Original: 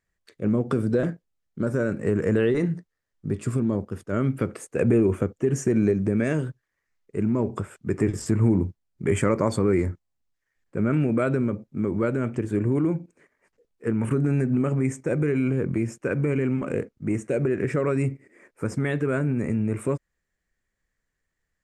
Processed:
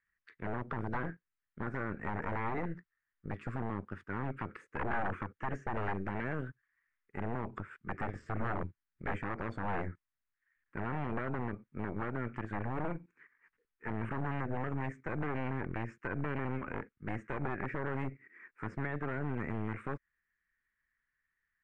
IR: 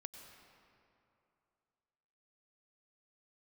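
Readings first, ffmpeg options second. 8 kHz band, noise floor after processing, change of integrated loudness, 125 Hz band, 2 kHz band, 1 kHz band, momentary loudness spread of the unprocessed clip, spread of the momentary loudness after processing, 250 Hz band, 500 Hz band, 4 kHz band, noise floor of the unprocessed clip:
under -30 dB, under -85 dBFS, -14.0 dB, -14.0 dB, -5.0 dB, -1.5 dB, 9 LU, 7 LU, -16.5 dB, -16.5 dB, -13.0 dB, -80 dBFS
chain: -filter_complex "[0:a]equalizer=f=1.3k:w=0.63:g=-3.5,acrossover=split=940[a][b];[a]aeval=exprs='0.531*(cos(1*acos(clip(val(0)/0.531,-1,1)))-cos(1*PI/2))+0.188*(cos(2*acos(clip(val(0)/0.531,-1,1)))-cos(2*PI/2))+0.211*(cos(3*acos(clip(val(0)/0.531,-1,1)))-cos(3*PI/2))+0.133*(cos(4*acos(clip(val(0)/0.531,-1,1)))-cos(4*PI/2))+0.00376*(cos(6*acos(clip(val(0)/0.531,-1,1)))-cos(6*PI/2))':c=same[c];[b]acompressor=threshold=-45dB:ratio=6[d];[c][d]amix=inputs=2:normalize=0,aeval=exprs='0.0398*(abs(mod(val(0)/0.0398+3,4)-2)-1)':c=same,lowpass=f=1.7k:t=q:w=1.9,volume=1dB"

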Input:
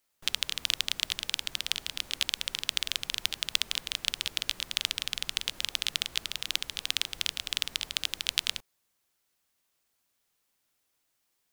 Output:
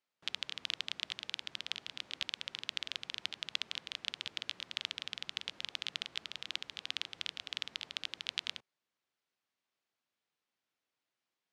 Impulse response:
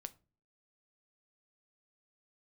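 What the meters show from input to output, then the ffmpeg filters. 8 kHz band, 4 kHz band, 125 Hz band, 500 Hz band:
-16.5 dB, -9.0 dB, -11.5 dB, -7.0 dB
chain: -af "highpass=130,lowpass=4.2k,volume=-7dB"

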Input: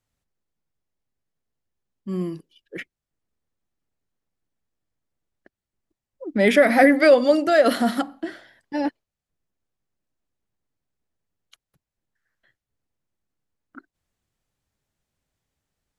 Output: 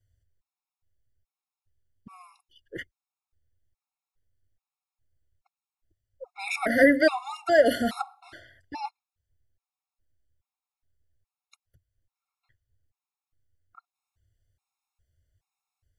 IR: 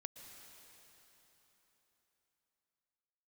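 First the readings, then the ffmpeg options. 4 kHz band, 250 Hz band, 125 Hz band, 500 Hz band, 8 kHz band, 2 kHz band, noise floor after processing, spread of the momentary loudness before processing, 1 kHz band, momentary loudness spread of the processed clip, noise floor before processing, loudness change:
-5.5 dB, -7.0 dB, n/a, -6.5 dB, -4.5 dB, -3.5 dB, under -85 dBFS, 20 LU, -6.5 dB, 22 LU, under -85 dBFS, -4.0 dB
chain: -af "lowshelf=f=130:t=q:w=3:g=10.5,afftfilt=real='re*gt(sin(2*PI*1.2*pts/sr)*(1-2*mod(floor(b*sr/1024/710),2)),0)':imag='im*gt(sin(2*PI*1.2*pts/sr)*(1-2*mod(floor(b*sr/1024/710),2)),0)':win_size=1024:overlap=0.75,volume=-1.5dB"

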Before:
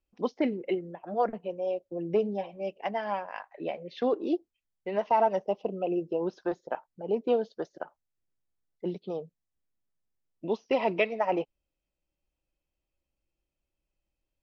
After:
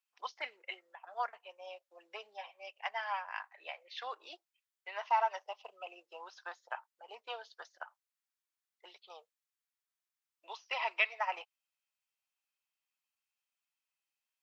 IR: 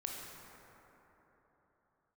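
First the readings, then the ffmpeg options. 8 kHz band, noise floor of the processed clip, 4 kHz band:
n/a, under -85 dBFS, +1.0 dB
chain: -af "highpass=f=990:w=0.5412,highpass=f=990:w=1.3066,volume=1dB"

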